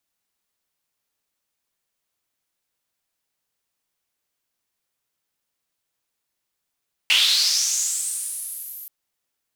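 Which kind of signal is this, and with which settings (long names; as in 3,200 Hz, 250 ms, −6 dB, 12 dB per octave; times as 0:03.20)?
filter sweep on noise white, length 1.78 s bandpass, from 2,700 Hz, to 13,000 Hz, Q 5, linear, gain ramp −25.5 dB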